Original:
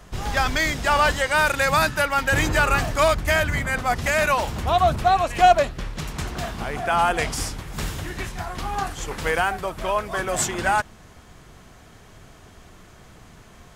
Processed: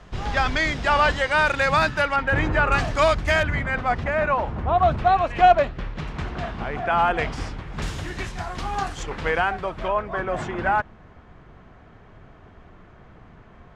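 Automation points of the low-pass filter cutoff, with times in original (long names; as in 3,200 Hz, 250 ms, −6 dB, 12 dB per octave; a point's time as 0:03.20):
4,300 Hz
from 0:02.16 2,100 Hz
from 0:02.72 5,300 Hz
from 0:03.43 2,700 Hz
from 0:04.04 1,500 Hz
from 0:04.83 2,800 Hz
from 0:07.82 6,900 Hz
from 0:09.03 3,300 Hz
from 0:09.88 1,900 Hz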